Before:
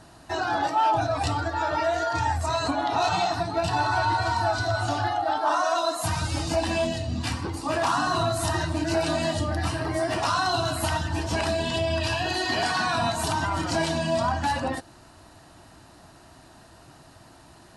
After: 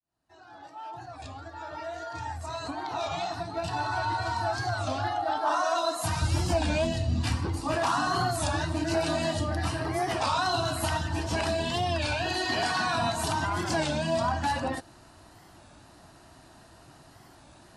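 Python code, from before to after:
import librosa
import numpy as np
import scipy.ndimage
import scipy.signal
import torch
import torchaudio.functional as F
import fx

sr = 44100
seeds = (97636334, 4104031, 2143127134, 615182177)

y = fx.fade_in_head(x, sr, length_s=5.83)
y = fx.low_shelf(y, sr, hz=110.0, db=9.5, at=(6.22, 7.75))
y = fx.record_warp(y, sr, rpm=33.33, depth_cents=160.0)
y = F.gain(torch.from_numpy(y), -2.5).numpy()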